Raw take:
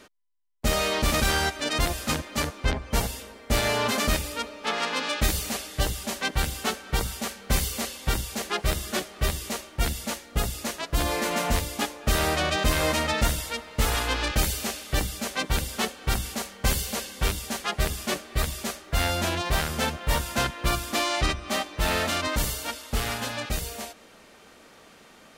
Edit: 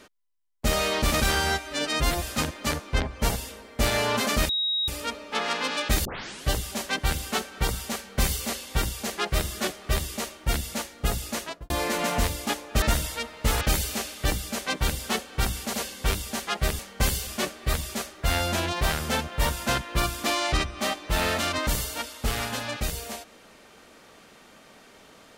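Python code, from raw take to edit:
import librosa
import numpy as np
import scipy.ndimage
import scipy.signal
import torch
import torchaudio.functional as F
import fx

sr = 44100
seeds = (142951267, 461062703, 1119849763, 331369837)

y = fx.studio_fade_out(x, sr, start_s=10.76, length_s=0.26)
y = fx.edit(y, sr, fx.stretch_span(start_s=1.35, length_s=0.58, factor=1.5),
    fx.insert_tone(at_s=4.2, length_s=0.39, hz=3800.0, db=-23.0),
    fx.tape_start(start_s=5.37, length_s=0.42),
    fx.cut(start_s=12.14, length_s=1.02),
    fx.cut(start_s=13.95, length_s=0.35),
    fx.move(start_s=16.43, length_s=0.48, to_s=17.96), tone=tone)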